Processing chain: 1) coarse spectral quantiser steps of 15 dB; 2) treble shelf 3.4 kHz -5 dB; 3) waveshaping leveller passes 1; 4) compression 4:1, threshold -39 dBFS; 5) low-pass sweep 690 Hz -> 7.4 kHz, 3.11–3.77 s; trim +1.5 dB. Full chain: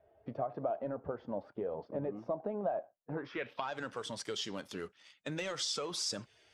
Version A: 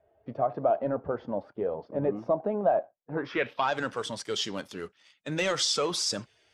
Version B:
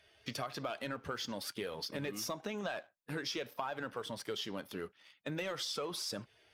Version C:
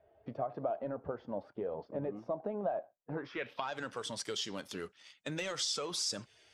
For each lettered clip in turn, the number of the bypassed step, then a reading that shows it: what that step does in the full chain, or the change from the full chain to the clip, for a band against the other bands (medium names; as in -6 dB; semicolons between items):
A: 4, mean gain reduction 7.0 dB; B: 5, loudness change -1.5 LU; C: 2, 8 kHz band +2.0 dB